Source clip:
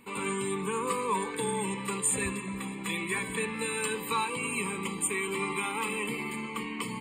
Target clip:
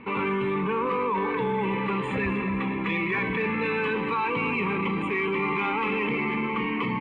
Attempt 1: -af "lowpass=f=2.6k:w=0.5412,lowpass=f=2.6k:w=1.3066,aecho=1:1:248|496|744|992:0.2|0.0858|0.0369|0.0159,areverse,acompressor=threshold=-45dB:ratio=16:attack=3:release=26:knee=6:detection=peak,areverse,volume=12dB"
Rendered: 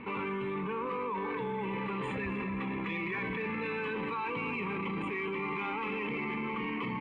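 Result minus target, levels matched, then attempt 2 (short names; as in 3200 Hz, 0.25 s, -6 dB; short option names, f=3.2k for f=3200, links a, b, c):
compressor: peak gain reduction +9 dB
-af "lowpass=f=2.6k:w=0.5412,lowpass=f=2.6k:w=1.3066,aecho=1:1:248|496|744|992:0.2|0.0858|0.0369|0.0159,areverse,acompressor=threshold=-35.5dB:ratio=16:attack=3:release=26:knee=6:detection=peak,areverse,volume=12dB"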